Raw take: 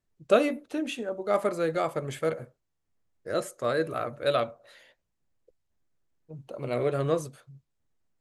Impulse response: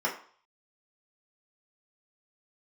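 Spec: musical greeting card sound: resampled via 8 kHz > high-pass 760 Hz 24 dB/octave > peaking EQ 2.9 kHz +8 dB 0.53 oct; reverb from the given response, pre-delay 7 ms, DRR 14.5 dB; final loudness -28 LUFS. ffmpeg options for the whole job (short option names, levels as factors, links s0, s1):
-filter_complex "[0:a]asplit=2[s0][s1];[1:a]atrim=start_sample=2205,adelay=7[s2];[s1][s2]afir=irnorm=-1:irlink=0,volume=0.0631[s3];[s0][s3]amix=inputs=2:normalize=0,aresample=8000,aresample=44100,highpass=f=760:w=0.5412,highpass=f=760:w=1.3066,equalizer=f=2900:t=o:w=0.53:g=8,volume=2"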